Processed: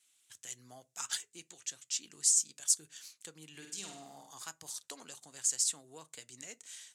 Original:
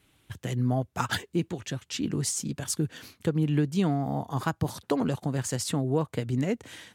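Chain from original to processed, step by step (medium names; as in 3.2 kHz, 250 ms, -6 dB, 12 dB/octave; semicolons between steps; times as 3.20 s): band-pass filter 7.4 kHz, Q 2.2; 3.50–4.31 s: flutter echo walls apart 8.6 m, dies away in 0.65 s; on a send at -16 dB: reverberation RT60 0.25 s, pre-delay 3 ms; on the sum: trim +6 dB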